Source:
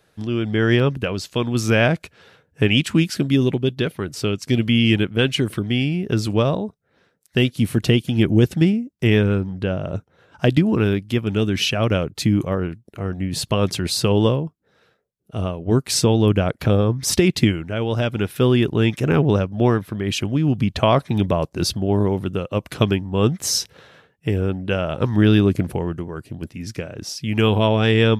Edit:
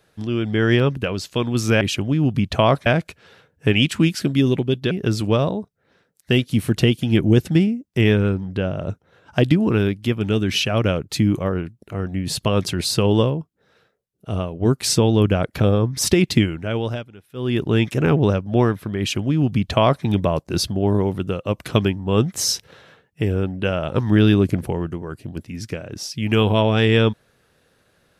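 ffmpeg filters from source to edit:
-filter_complex "[0:a]asplit=6[a][b][c][d][e][f];[a]atrim=end=1.812[g];[b]atrim=start=20.048:end=21.102[h];[c]atrim=start=1.808:end=3.862[i];[d]atrim=start=5.968:end=18.15,asetpts=PTS-STARTPTS,afade=t=out:st=11.872:d=0.31:silence=0.0841395[j];[e]atrim=start=18.15:end=18.4,asetpts=PTS-STARTPTS,volume=-21.5dB[k];[f]atrim=start=18.4,asetpts=PTS-STARTPTS,afade=t=in:d=0.31:silence=0.0841395[l];[g][h]acrossfade=d=0.004:c1=hsin:c2=hsin[m];[m][i]acrossfade=d=0.004:c1=hsin:c2=hsin[n];[j][k][l]concat=n=3:v=0:a=1[o];[n][o]acrossfade=d=0.004:c1=hsin:c2=hsin"

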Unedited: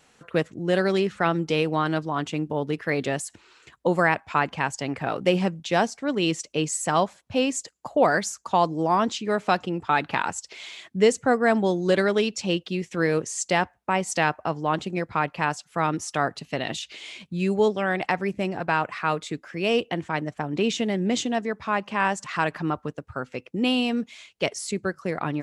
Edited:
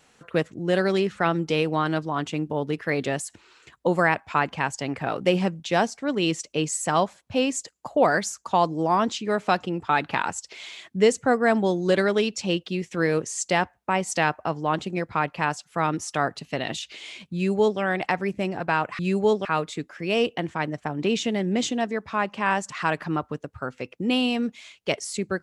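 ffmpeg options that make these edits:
-filter_complex "[0:a]asplit=3[a][b][c];[a]atrim=end=18.992[d];[b]atrim=start=17.338:end=17.802[e];[c]atrim=start=18.988[f];[d][e]acrossfade=d=0.004:c1=hsin:c2=hsin[g];[g][f]acrossfade=d=0.004:c1=hsin:c2=hsin"

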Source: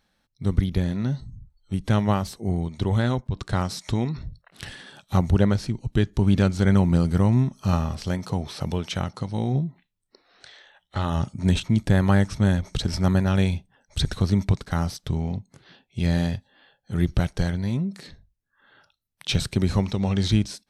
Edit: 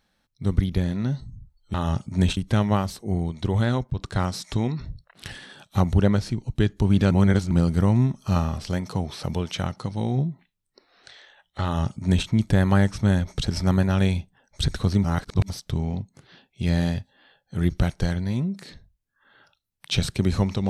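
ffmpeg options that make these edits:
-filter_complex "[0:a]asplit=7[a][b][c][d][e][f][g];[a]atrim=end=1.742[h];[b]atrim=start=11.008:end=11.642[i];[c]atrim=start=1.738:end=6.482[j];[d]atrim=start=6.478:end=6.882,asetpts=PTS-STARTPTS,areverse[k];[e]atrim=start=6.878:end=14.412[l];[f]atrim=start=14.408:end=14.872,asetpts=PTS-STARTPTS,areverse[m];[g]atrim=start=14.868[n];[h][i]acrossfade=d=0.004:c1=hsin:c2=hsin[o];[o][j]acrossfade=d=0.004:c1=hsin:c2=hsin[p];[p][k]acrossfade=d=0.004:c1=hsin:c2=hsin[q];[q][l]acrossfade=d=0.004:c1=hsin:c2=hsin[r];[r][m]acrossfade=d=0.004:c1=hsin:c2=hsin[s];[s][n]acrossfade=d=0.004:c1=hsin:c2=hsin"

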